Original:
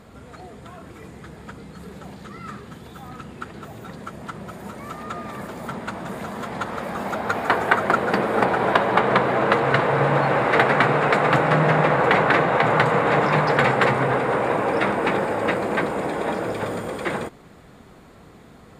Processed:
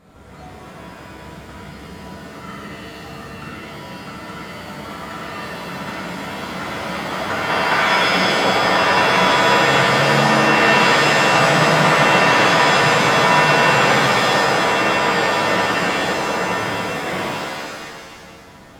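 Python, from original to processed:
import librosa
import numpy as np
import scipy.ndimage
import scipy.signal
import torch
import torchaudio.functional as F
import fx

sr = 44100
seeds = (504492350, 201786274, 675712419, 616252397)

y = fx.rev_shimmer(x, sr, seeds[0], rt60_s=1.8, semitones=7, shimmer_db=-2, drr_db=-7.0)
y = y * 10.0 ** (-7.0 / 20.0)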